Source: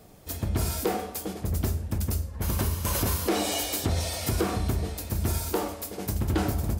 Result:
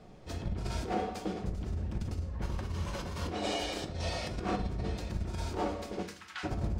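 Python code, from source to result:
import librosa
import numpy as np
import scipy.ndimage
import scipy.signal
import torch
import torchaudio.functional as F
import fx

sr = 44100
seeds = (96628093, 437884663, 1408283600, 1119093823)

y = fx.highpass(x, sr, hz=1300.0, slope=24, at=(6.02, 6.43), fade=0.02)
y = fx.over_compress(y, sr, threshold_db=-29.0, ratio=-0.5)
y = fx.air_absorb(y, sr, metres=130.0)
y = fx.room_shoebox(y, sr, seeds[0], volume_m3=440.0, walls='furnished', distance_m=0.98)
y = y * librosa.db_to_amplitude(-4.0)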